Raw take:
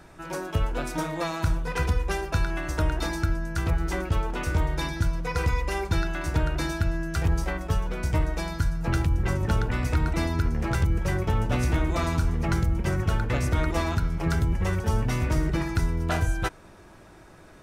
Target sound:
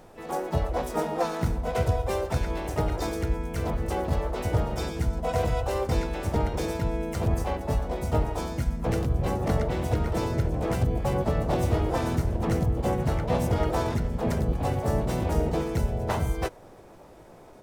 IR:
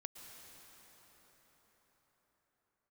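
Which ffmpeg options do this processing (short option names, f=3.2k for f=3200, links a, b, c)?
-filter_complex "[0:a]equalizer=f=500:t=o:w=1:g=11,equalizer=f=1k:t=o:w=1:g=-5,equalizer=f=2k:t=o:w=1:g=-6,asplit=4[a][b][c][d];[b]asetrate=58866,aresample=44100,atempo=0.749154,volume=-3dB[e];[c]asetrate=66075,aresample=44100,atempo=0.66742,volume=-3dB[f];[d]asetrate=88200,aresample=44100,atempo=0.5,volume=-10dB[g];[a][e][f][g]amix=inputs=4:normalize=0,volume=-5.5dB"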